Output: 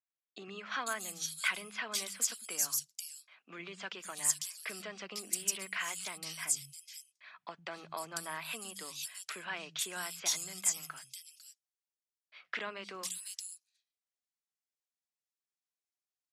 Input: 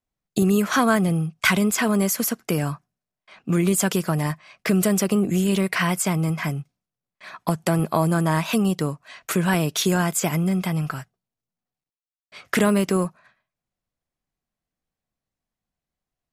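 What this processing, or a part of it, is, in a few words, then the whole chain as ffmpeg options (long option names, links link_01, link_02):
piezo pickup straight into a mixer: -filter_complex "[0:a]lowpass=6800,aderivative,asplit=3[link_01][link_02][link_03];[link_01]afade=type=out:start_time=6.5:duration=0.02[link_04];[link_02]asubboost=boost=3:cutoff=230,afade=type=in:start_time=6.5:duration=0.02,afade=type=out:start_time=7.39:duration=0.02[link_05];[link_03]afade=type=in:start_time=7.39:duration=0.02[link_06];[link_04][link_05][link_06]amix=inputs=3:normalize=0,acrossover=split=180|3500[link_07][link_08][link_09];[link_07]adelay=100[link_10];[link_09]adelay=500[link_11];[link_10][link_08][link_11]amix=inputs=3:normalize=0"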